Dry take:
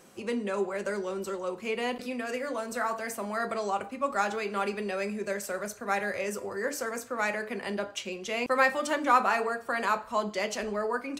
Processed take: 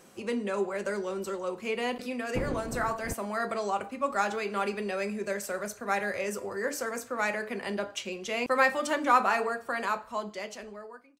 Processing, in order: fade out at the end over 1.77 s; 2.35–3.12 s: wind noise 360 Hz -34 dBFS

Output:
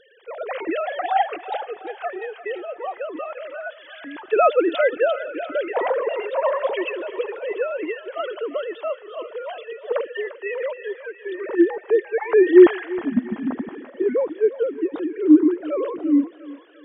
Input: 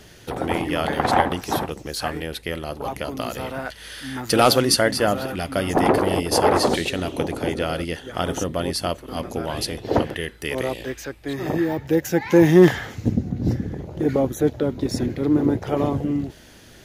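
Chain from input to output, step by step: formants replaced by sine waves; thinning echo 347 ms, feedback 67%, high-pass 590 Hz, level -13 dB

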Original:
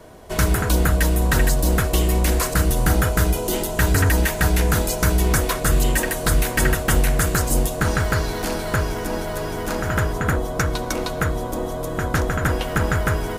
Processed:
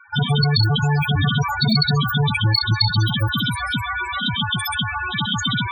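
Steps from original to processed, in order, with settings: tilt shelf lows -7 dB, about 710 Hz; speed mistake 33 rpm record played at 78 rpm; in parallel at -4.5 dB: bit crusher 6-bit; on the sum: loudest bins only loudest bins 8; trim +3.5 dB

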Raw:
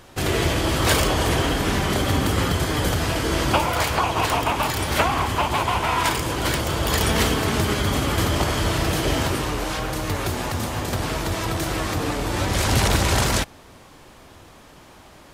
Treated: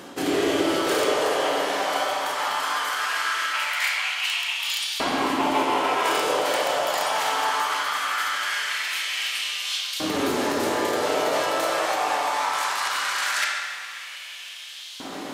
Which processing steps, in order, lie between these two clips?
reverse; compression 16:1, threshold -32 dBFS, peak gain reduction 18.5 dB; reverse; LFO high-pass saw up 0.2 Hz 250–3800 Hz; reverberation RT60 1.8 s, pre-delay 7 ms, DRR -3 dB; trim +7.5 dB

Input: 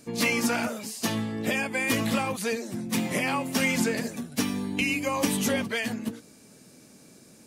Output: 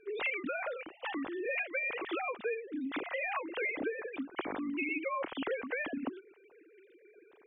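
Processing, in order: formants replaced by sine waves; compression 6:1, threshold -30 dBFS, peak gain reduction 12.5 dB; trim -2.5 dB

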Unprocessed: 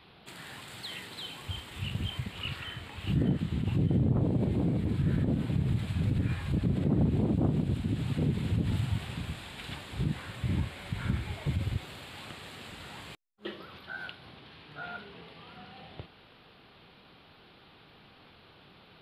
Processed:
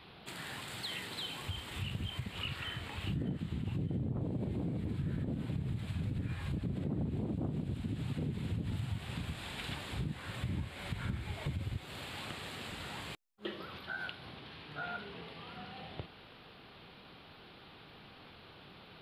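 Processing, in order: compression 3:1, threshold -38 dBFS, peak gain reduction 12.5 dB; trim +1.5 dB

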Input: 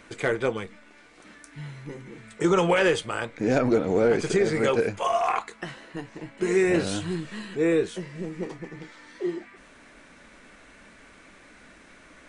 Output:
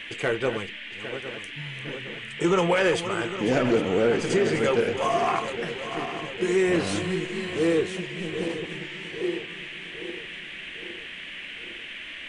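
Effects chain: backward echo that repeats 404 ms, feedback 71%, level -10.5 dB; saturation -11 dBFS, distortion -25 dB; band noise 1.7–3.2 kHz -39 dBFS

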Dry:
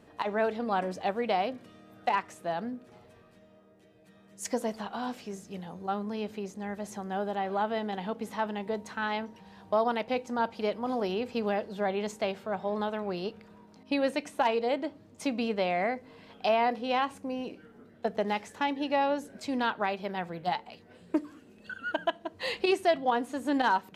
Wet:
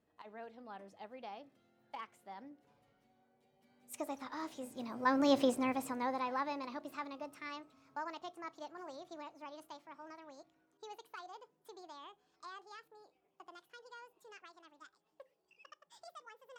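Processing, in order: gliding tape speed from 98% -> 191%; Doppler pass-by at 5.40 s, 11 m/s, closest 2 m; trim +7.5 dB

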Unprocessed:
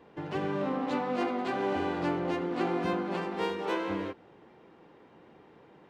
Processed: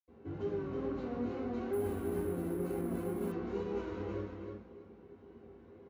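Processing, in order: peak limiter -25 dBFS, peak gain reduction 8.5 dB; saturation -34.5 dBFS, distortion -11 dB; wow and flutter 86 cents; feedback delay 322 ms, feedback 21%, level -5 dB; reverberation RT60 0.50 s, pre-delay 77 ms; 1.73–3.32 s: careless resampling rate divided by 4×, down none, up hold; trim -8.5 dB

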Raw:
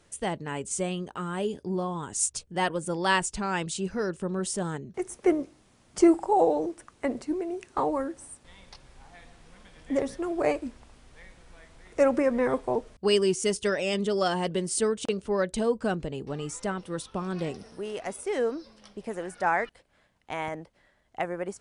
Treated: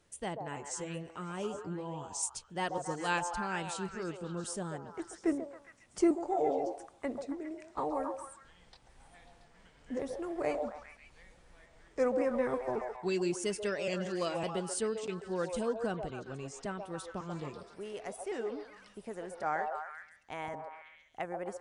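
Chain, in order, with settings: pitch shift switched off and on -1.5 st, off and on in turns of 555 ms; repeats whose band climbs or falls 136 ms, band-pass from 670 Hz, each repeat 0.7 oct, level -2 dB; trim -8 dB

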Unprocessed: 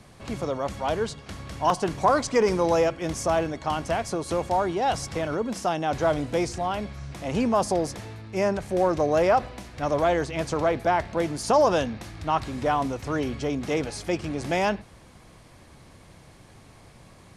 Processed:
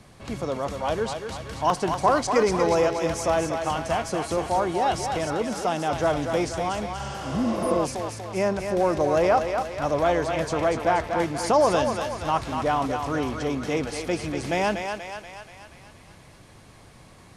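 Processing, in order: thinning echo 240 ms, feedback 60%, high-pass 450 Hz, level -5 dB; spectral replace 7.02–7.74 s, 300–9000 Hz both

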